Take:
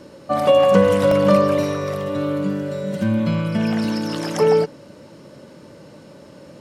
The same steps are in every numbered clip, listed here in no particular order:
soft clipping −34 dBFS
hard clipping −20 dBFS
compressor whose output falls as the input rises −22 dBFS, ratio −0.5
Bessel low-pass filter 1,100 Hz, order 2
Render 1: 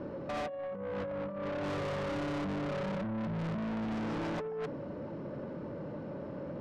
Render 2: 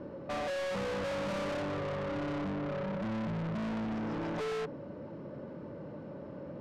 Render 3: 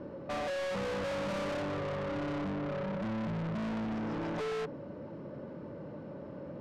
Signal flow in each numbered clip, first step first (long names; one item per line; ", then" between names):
compressor whose output falls as the input rises, then hard clipping, then Bessel low-pass filter, then soft clipping
hard clipping, then Bessel low-pass filter, then soft clipping, then compressor whose output falls as the input rises
hard clipping, then Bessel low-pass filter, then compressor whose output falls as the input rises, then soft clipping